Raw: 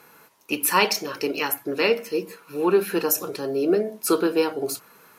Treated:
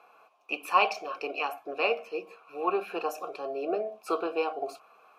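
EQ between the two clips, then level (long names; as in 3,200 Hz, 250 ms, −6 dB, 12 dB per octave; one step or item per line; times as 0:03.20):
formant filter a
high-pass filter 190 Hz 6 dB per octave
+7.5 dB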